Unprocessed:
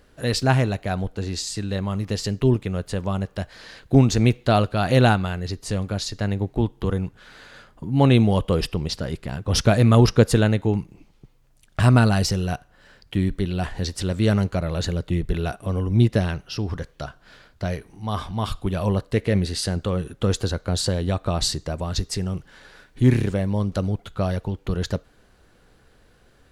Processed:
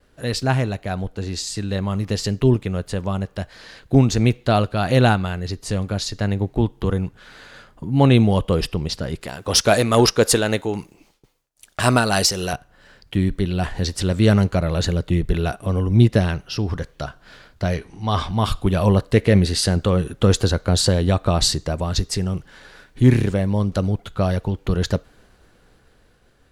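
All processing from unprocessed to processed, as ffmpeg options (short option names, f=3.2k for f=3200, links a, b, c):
-filter_complex "[0:a]asettb=1/sr,asplit=3[a][b][c];[a]atrim=end=9.214[d];[b]atrim=start=9.21:end=12.53,asetpts=PTS-STARTPTS,afade=t=in:d=0.004:c=qsin,afade=t=out:st=3.316:d=0.004:c=qsin,bass=f=250:g=-13,treble=f=4k:g=6,acontrast=36,tremolo=f=3.7:d=0.42[e];[c]atrim=start=12.526[f];[d][e]acrossfade=d=0.004:c1=hsin:c2=qsin[g];[g][f]acrossfade=d=0.004:c1=qsin:c2=hsin,asettb=1/sr,asplit=3[h][i][j];[h]atrim=end=17.744[k];[i]atrim=start=17.74:end=18.29,asetpts=PTS-STARTPTS,afade=t=in:d=0.004:c=qsin,afade=t=out:st=0.546:d=0.004:c=qsin,lowpass=5.4k,highshelf=f=3.8k:g=7.5,asplit=2[l][m];[m]adelay=12,volume=-11dB[n];[l][n]amix=inputs=2:normalize=0,atrim=end_sample=24255[o];[j]atrim=start=18.286[p];[k][o]acrossfade=d=0.004:c1=hsin:c2=qsin[q];[q][p]acrossfade=d=0.004:c1=qsin:c2=hsin,agate=range=-33dB:threshold=-54dB:ratio=3:detection=peak,dynaudnorm=f=290:g=11:m=10dB,volume=-1dB"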